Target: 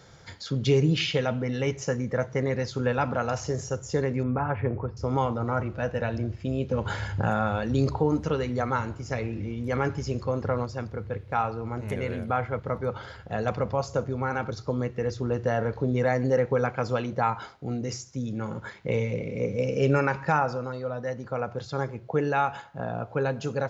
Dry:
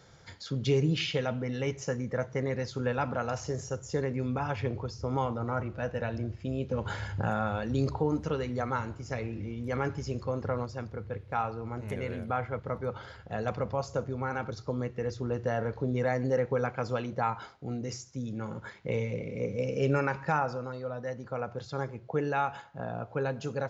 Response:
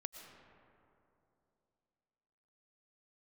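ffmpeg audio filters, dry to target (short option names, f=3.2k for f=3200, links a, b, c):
-filter_complex "[0:a]asettb=1/sr,asplit=3[a][b][c];[a]atrim=end=4.234[d];[b]atrim=start=4.23:end=4.97,asetpts=PTS-STARTPTS,afade=t=in:d=0.004:c=qsin,afade=t=out:st=0.736:d=0.004:c=qsin,lowpass=f=2k:w=0.5412,lowpass=f=2k:w=1.3066[e];[c]atrim=start=4.966[f];[d][e]acrossfade=d=0.004:c1=hsin:c2=qsin[g];[g][f]acrossfade=d=0.004:c1=qsin:c2=hsin,volume=4.5dB"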